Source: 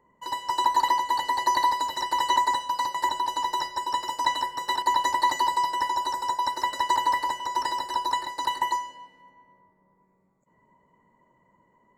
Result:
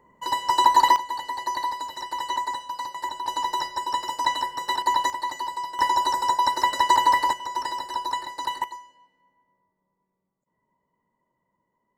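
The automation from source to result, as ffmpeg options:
ffmpeg -i in.wav -af "asetnsamples=nb_out_samples=441:pad=0,asendcmd='0.96 volume volume -5dB;3.26 volume volume 1dB;5.1 volume volume -6.5dB;5.79 volume volume 5dB;7.33 volume volume -1.5dB;8.64 volume volume -12dB',volume=5.5dB" out.wav

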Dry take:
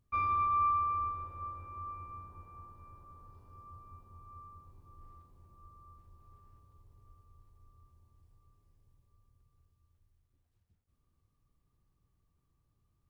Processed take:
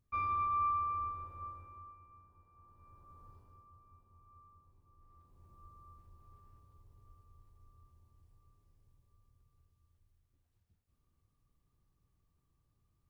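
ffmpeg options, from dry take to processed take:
ffmpeg -i in.wav -af "volume=17dB,afade=type=out:start_time=1.45:duration=0.51:silence=0.316228,afade=type=in:start_time=2.55:duration=0.75:silence=0.266073,afade=type=out:start_time=3.3:duration=0.37:silence=0.398107,afade=type=in:start_time=5.07:duration=0.43:silence=0.354813" out.wav

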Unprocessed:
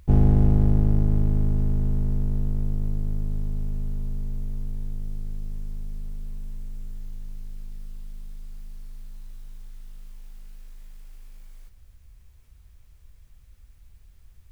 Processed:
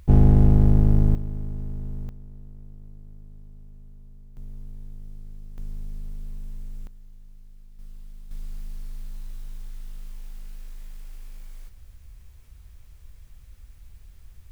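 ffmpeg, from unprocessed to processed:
ffmpeg -i in.wav -af "asetnsamples=nb_out_samples=441:pad=0,asendcmd='1.15 volume volume -9dB;2.09 volume volume -18dB;4.37 volume volume -8.5dB;5.58 volume volume -1dB;6.87 volume volume -11dB;7.79 volume volume -4dB;8.31 volume volume 4.5dB',volume=2.5dB" out.wav

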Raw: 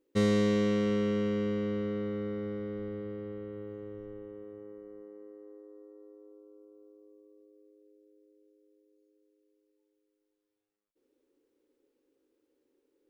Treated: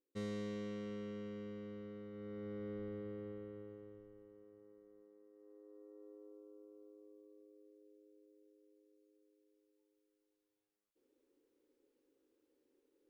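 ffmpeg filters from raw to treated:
ffmpeg -i in.wav -af "volume=5.5dB,afade=type=in:start_time=2.11:duration=0.59:silence=0.334965,afade=type=out:start_time=3.27:duration=0.83:silence=0.375837,afade=type=in:start_time=5.31:duration=0.84:silence=0.237137" out.wav

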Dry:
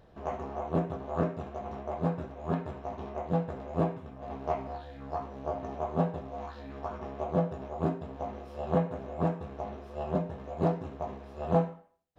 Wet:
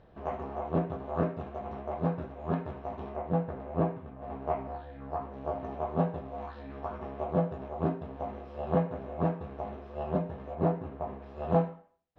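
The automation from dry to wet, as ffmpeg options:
ffmpeg -i in.wav -af "asetnsamples=nb_out_samples=441:pad=0,asendcmd='3.16 lowpass f 2300;5.33 lowpass f 3300;10.55 lowpass f 2200;11.22 lowpass f 3600',lowpass=3500" out.wav

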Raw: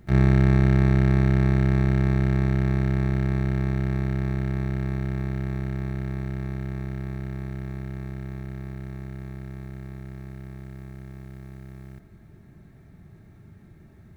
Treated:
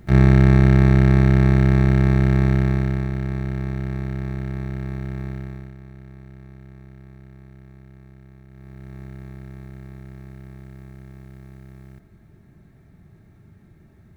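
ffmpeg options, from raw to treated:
ffmpeg -i in.wav -af "volume=16dB,afade=type=out:start_time=2.52:duration=0.57:silence=0.473151,afade=type=out:start_time=5.29:duration=0.46:silence=0.298538,afade=type=in:start_time=8.49:duration=0.53:silence=0.281838" out.wav

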